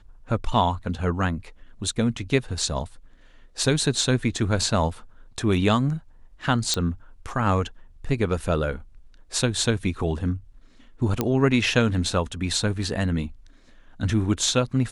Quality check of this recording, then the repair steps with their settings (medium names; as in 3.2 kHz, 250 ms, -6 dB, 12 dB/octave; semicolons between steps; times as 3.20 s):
6.74 s: pop -9 dBFS
11.21 s: pop -8 dBFS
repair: de-click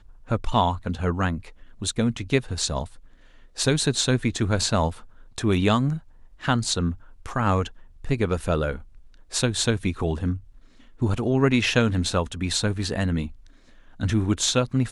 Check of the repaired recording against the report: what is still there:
nothing left